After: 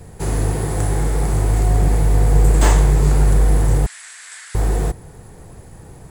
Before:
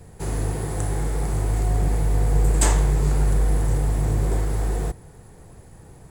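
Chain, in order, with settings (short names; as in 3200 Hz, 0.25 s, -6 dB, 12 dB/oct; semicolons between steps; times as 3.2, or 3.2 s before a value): 3.86–4.55 Chebyshev band-pass 1600–9100 Hz, order 3; slew limiter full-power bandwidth 220 Hz; gain +6 dB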